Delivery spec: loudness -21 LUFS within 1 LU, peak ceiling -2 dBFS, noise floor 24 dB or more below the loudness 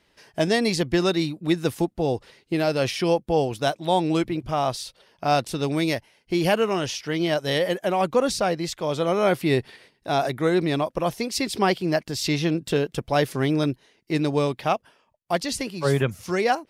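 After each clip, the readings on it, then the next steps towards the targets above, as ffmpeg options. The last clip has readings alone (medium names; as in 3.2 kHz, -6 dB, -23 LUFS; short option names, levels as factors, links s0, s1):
loudness -24.0 LUFS; peak level -9.0 dBFS; loudness target -21.0 LUFS
-> -af "volume=1.41"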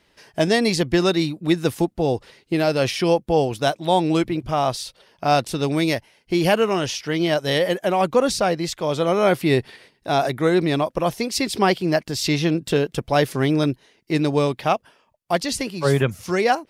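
loudness -21.0 LUFS; peak level -6.0 dBFS; noise floor -63 dBFS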